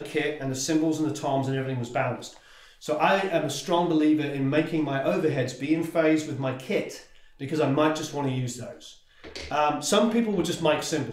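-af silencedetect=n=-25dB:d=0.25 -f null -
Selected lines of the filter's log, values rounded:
silence_start: 2.14
silence_end: 2.89 | silence_duration: 0.75
silence_start: 6.83
silence_end: 7.43 | silence_duration: 0.60
silence_start: 8.53
silence_end: 9.36 | silence_duration: 0.83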